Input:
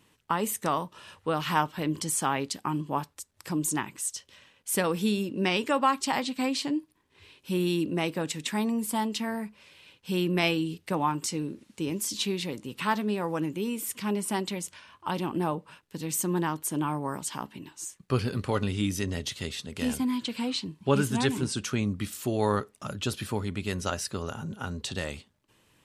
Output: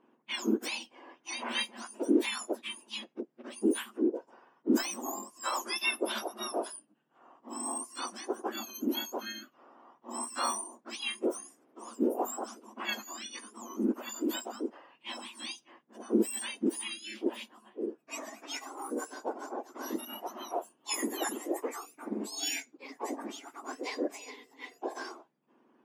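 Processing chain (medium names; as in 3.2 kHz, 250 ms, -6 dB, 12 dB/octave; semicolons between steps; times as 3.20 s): spectrum inverted on a logarithmic axis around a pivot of 1.7 kHz; level-controlled noise filter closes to 2.7 kHz, open at -24 dBFS; trim -3 dB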